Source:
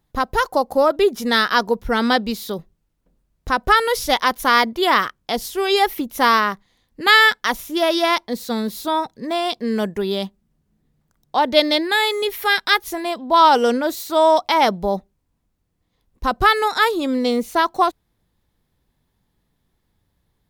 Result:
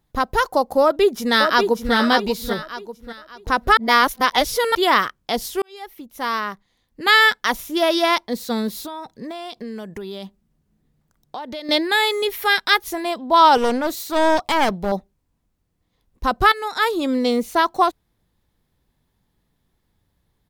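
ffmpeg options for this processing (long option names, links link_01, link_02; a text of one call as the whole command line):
ffmpeg -i in.wav -filter_complex "[0:a]asplit=2[link_01][link_02];[link_02]afade=type=in:start_time=0.81:duration=0.01,afade=type=out:start_time=1.94:duration=0.01,aecho=0:1:590|1180|1770|2360:0.501187|0.175416|0.0613954|0.0214884[link_03];[link_01][link_03]amix=inputs=2:normalize=0,asettb=1/sr,asplit=3[link_04][link_05][link_06];[link_04]atrim=end=8.784[link_07];[link_05]atrim=start=8.78:end=11.69,asetpts=PTS-STARTPTS,afade=type=in:duration=0.004:curve=qsin,afade=type=out:start_time=2.906:duration=0.004:curve=qsin,acompressor=threshold=-28dB:ratio=8:attack=3.2:release=140:knee=1:detection=peak[link_08];[link_06]atrim=start=11.686[link_09];[link_07][link_08]acrossfade=duration=0.004:curve1=hsin:curve2=qsin[link_10];[link_10][link_09]acrossfade=duration=0.004:curve1=qsin:curve2=hsin,asettb=1/sr,asplit=3[link_11][link_12][link_13];[link_11]atrim=end=13.574[link_14];[link_12]atrim=start=13.57:end=14.92,asetpts=PTS-STARTPTS,afade=type=in:duration=0.004:curve=qsin,afade=type=out:start_time=1.346:duration=0.004:curve=qsin,aeval=exprs='clip(val(0),-1,0.0562)':channel_layout=same[link_15];[link_13]atrim=start=14.916[link_16];[link_14][link_15]acrossfade=duration=0.004:curve1=hsin:curve2=qsin[link_17];[link_17][link_16]acrossfade=duration=0.004:curve1=qsin:curve2=hsin,asplit=5[link_18][link_19][link_20][link_21][link_22];[link_18]atrim=end=3.772[link_23];[link_19]atrim=start=3.768:end=4.752,asetpts=PTS-STARTPTS,areverse[link_24];[link_20]atrim=start=4.748:end=5.62,asetpts=PTS-STARTPTS,afade=type=out:start_time=0.868:duration=0.004:curve=hsin[link_25];[link_21]atrim=start=5.62:end=16.52,asetpts=PTS-STARTPTS,afade=type=in:duration=1.82,afade=type=out:start_time=10.896:duration=0.004:curve=hsin:silence=0.211349[link_26];[link_22]atrim=start=16.52,asetpts=PTS-STARTPTS,afade=type=in:duration=0.48:silence=0.211349[link_27];[link_23][link_24]acrossfade=duration=0.004:curve1=hsin:curve2=hsin[link_28];[link_25][link_26][link_27]concat=n=3:v=0:a=1[link_29];[link_28][link_29]acrossfade=duration=0.004:curve1=hsin:curve2=hsin" out.wav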